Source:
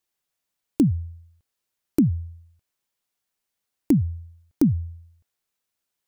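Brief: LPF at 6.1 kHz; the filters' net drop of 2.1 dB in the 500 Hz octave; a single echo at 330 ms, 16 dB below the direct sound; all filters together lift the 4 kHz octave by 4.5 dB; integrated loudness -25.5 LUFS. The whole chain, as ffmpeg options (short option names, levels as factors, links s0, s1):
-af "lowpass=6100,equalizer=f=500:t=o:g=-4,equalizer=f=4000:t=o:g=7,aecho=1:1:330:0.158,volume=0.944"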